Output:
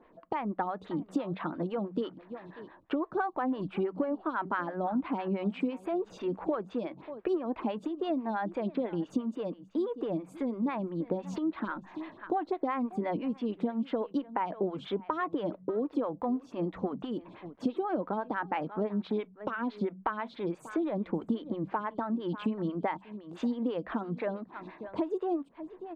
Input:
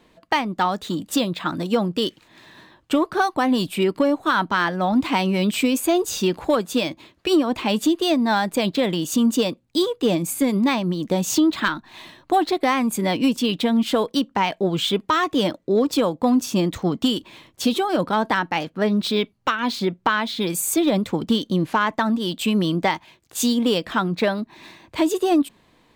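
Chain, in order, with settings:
low-pass filter 1,700 Hz 12 dB per octave
hum removal 46.79 Hz, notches 4
on a send: single-tap delay 588 ms −21.5 dB
on the sum: downward compressor 6 to 1, threshold −27 dBFS, peak gain reduction 12.5 dB
phaser with staggered stages 6 Hz

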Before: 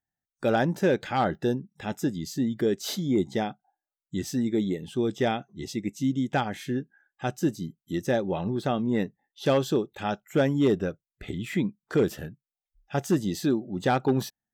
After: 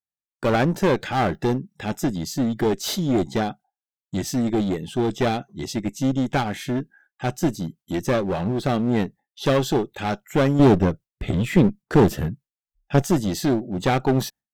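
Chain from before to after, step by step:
noise gate with hold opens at −54 dBFS
0:10.59–0:13.02: low-shelf EQ 360 Hz +9.5 dB
asymmetric clip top −29.5 dBFS
level +6.5 dB

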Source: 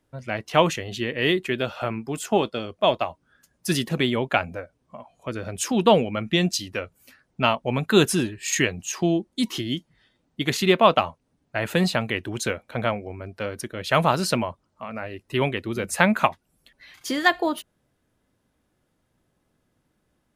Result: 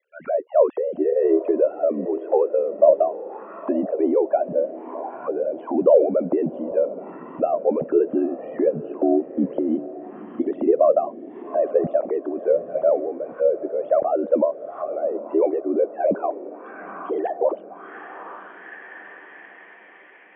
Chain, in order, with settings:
three sine waves on the formant tracks
in parallel at +0.5 dB: brickwall limiter −13.5 dBFS, peak gain reduction 11.5 dB
on the sum: transient designer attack −2 dB, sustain +5 dB
downward compressor 2 to 1, threshold −18 dBFS, peak gain reduction 6.5 dB
ring modulation 38 Hz
on a send: feedback delay with all-pass diffusion 849 ms, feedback 55%, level −14 dB
on the sum: envelope-controlled low-pass 570–2,400 Hz down, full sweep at −28 dBFS
level −2 dB

